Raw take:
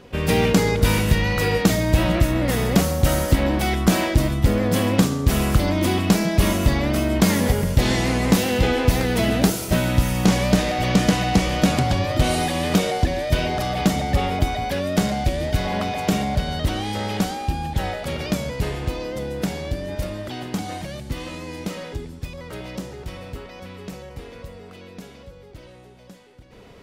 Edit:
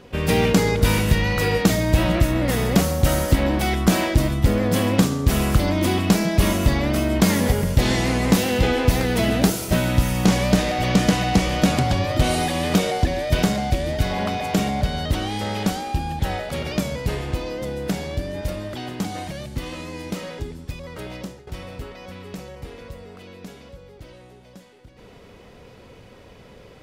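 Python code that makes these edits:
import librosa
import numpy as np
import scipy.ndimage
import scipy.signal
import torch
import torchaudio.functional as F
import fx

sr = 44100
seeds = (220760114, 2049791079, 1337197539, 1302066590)

y = fx.edit(x, sr, fx.cut(start_s=13.43, length_s=1.54),
    fx.fade_out_to(start_s=22.7, length_s=0.31, floor_db=-14.5), tone=tone)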